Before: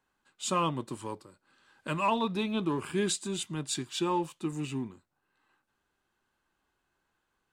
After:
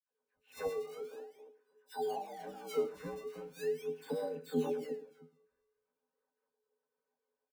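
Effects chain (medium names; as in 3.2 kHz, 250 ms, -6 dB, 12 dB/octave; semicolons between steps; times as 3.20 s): chunks repeated in reverse 244 ms, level -8.5 dB; pitch-class resonator D#, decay 0.29 s; mistuned SSB +120 Hz 290–3200 Hz; formant-preserving pitch shift -9.5 st; in parallel at -5.5 dB: decimation with a swept rate 19×, swing 100% 0.41 Hz; on the sum: phase dispersion lows, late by 98 ms, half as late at 1.4 kHz; on a send: delay 106 ms -15.5 dB; on the sum: trim +7.5 dB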